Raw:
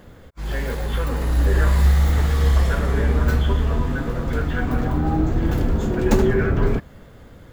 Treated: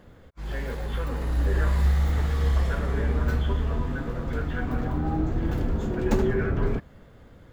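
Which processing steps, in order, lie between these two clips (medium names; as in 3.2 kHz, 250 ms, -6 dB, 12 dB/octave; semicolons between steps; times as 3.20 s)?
treble shelf 5.9 kHz -6.5 dB; trim -6 dB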